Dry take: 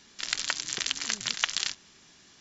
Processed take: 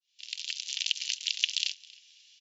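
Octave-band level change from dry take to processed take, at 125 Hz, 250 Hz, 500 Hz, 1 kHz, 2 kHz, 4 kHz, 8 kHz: under -40 dB, under -40 dB, under -40 dB, under -30 dB, -5.0 dB, +0.5 dB, no reading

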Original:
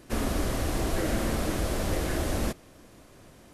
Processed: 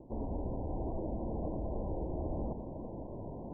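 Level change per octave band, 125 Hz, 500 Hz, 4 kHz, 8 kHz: -7.5 dB, -7.5 dB, under -40 dB, under -40 dB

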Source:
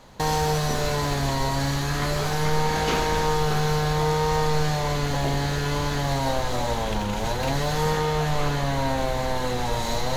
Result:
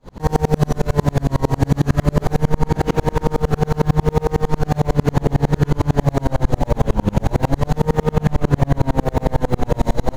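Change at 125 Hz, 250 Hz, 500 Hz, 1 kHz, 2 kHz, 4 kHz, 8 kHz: +8.5 dB, +9.0 dB, +5.0 dB, +1.0 dB, -2.5 dB, -7.5 dB, -5.5 dB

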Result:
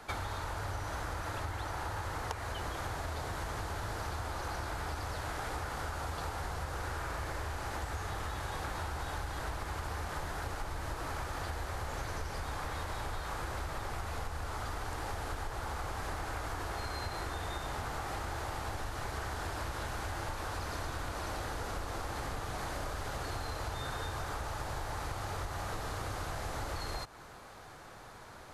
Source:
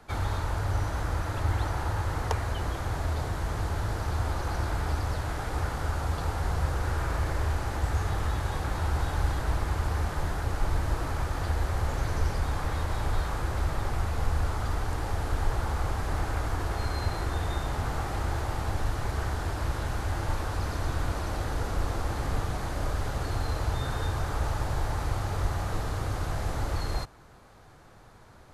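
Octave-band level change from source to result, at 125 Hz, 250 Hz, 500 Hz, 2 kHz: -11.5 dB, -8.5 dB, -5.5 dB, -3.0 dB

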